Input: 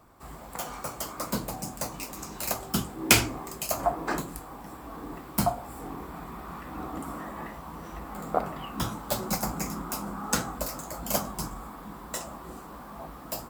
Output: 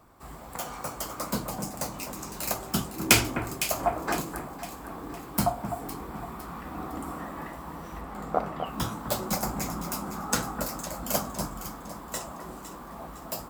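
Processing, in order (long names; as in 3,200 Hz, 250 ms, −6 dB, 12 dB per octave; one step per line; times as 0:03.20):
0:08.01–0:08.66: high-shelf EQ 7,500 Hz −9.5 dB
on a send: delay that swaps between a low-pass and a high-pass 254 ms, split 1,800 Hz, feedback 66%, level −8 dB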